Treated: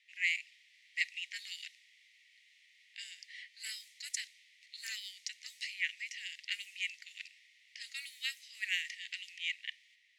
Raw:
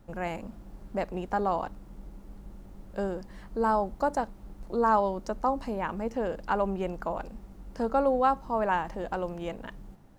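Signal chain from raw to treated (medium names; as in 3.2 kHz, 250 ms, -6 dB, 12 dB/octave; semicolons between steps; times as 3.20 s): level-controlled noise filter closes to 2.7 kHz, open at -21 dBFS; Chebyshev high-pass 1.9 kHz, order 8; trim +13 dB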